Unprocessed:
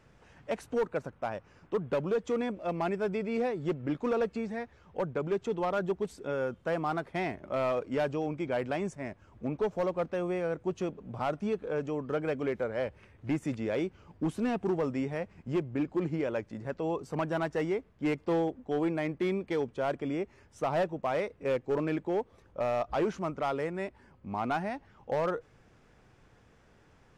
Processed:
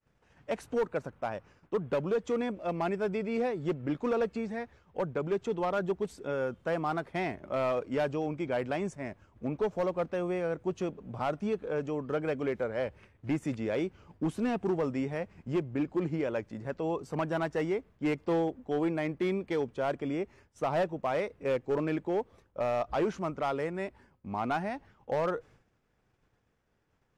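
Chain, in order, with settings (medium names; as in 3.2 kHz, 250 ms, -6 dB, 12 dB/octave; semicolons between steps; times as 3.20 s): expander -51 dBFS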